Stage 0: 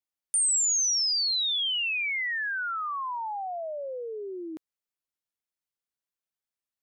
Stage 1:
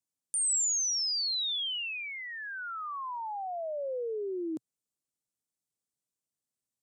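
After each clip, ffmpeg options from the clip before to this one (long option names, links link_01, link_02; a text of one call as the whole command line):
ffmpeg -i in.wav -filter_complex "[0:a]acrossover=split=4400[link_01][link_02];[link_02]acompressor=threshold=-37dB:ratio=4:attack=1:release=60[link_03];[link_01][link_03]amix=inputs=2:normalize=0,equalizer=frequency=125:width_type=o:width=1:gain=11,equalizer=frequency=250:width_type=o:width=1:gain=8,equalizer=frequency=500:width_type=o:width=1:gain=4,equalizer=frequency=2000:width_type=o:width=1:gain=-7,equalizer=frequency=8000:width_type=o:width=1:gain=11,volume=-4.5dB" out.wav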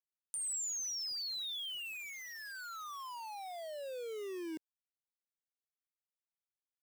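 ffmpeg -i in.wav -filter_complex "[0:a]aeval=exprs='val(0)*gte(abs(val(0)),0.0106)':channel_layout=same,lowshelf=frequency=410:gain=-10,acrossover=split=350[link_01][link_02];[link_02]acompressor=threshold=-58dB:ratio=1.5[link_03];[link_01][link_03]amix=inputs=2:normalize=0,volume=1dB" out.wav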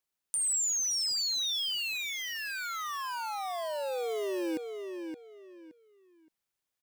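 ffmpeg -i in.wav -filter_complex "[0:a]asplit=2[link_01][link_02];[link_02]adelay=570,lowpass=frequency=3800:poles=1,volume=-6dB,asplit=2[link_03][link_04];[link_04]adelay=570,lowpass=frequency=3800:poles=1,volume=0.26,asplit=2[link_05][link_06];[link_06]adelay=570,lowpass=frequency=3800:poles=1,volume=0.26[link_07];[link_01][link_03][link_05][link_07]amix=inputs=4:normalize=0,volume=8.5dB" out.wav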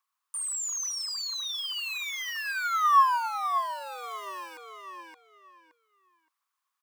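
ffmpeg -i in.wav -af "alimiter=level_in=5.5dB:limit=-24dB:level=0:latency=1:release=11,volume=-5.5dB,highpass=frequency=1100:width_type=q:width=9.3,aphaser=in_gain=1:out_gain=1:delay=2.5:decay=0.23:speed=1.4:type=triangular" out.wav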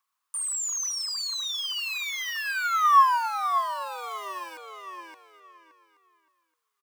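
ffmpeg -i in.wav -af "aecho=1:1:826:0.0944,volume=2.5dB" out.wav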